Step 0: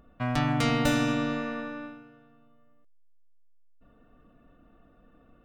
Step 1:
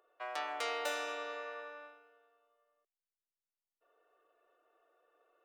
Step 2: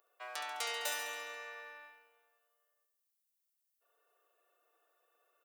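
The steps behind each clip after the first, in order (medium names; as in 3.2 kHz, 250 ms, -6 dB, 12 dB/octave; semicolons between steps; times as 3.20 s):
elliptic high-pass 380 Hz, stop band 40 dB; trim -7.5 dB
RIAA curve recording; feedback delay 69 ms, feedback 58%, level -7 dB; trim -4.5 dB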